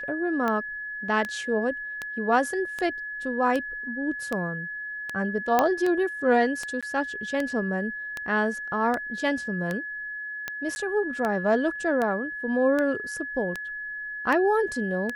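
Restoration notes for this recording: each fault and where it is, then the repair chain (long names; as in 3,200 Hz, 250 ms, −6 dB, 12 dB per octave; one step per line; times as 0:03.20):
scratch tick 78 rpm −15 dBFS
whistle 1,700 Hz −32 dBFS
0:05.59: click −7 dBFS
0:06.81–0:06.83: drop-out 16 ms
0:10.75–0:10.76: drop-out 10 ms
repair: click removal
notch filter 1,700 Hz, Q 30
repair the gap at 0:06.81, 16 ms
repair the gap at 0:10.75, 10 ms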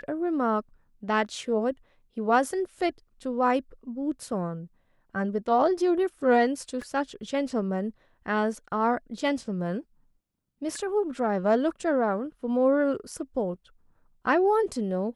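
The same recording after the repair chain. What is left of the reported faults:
0:05.59: click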